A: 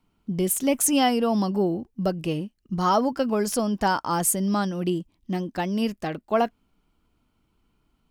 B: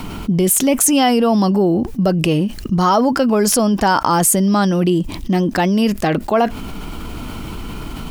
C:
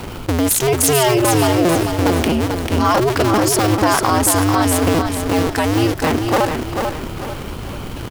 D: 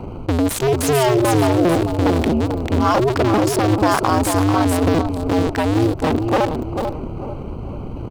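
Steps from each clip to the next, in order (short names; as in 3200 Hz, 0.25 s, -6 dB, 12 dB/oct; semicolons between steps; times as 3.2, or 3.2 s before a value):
fast leveller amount 70%; gain +5.5 dB
cycle switcher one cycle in 2, inverted; on a send: feedback echo 0.442 s, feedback 38%, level -5.5 dB; on the sum: gain -1.5 dB
Wiener smoothing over 25 samples; slew limiter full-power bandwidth 560 Hz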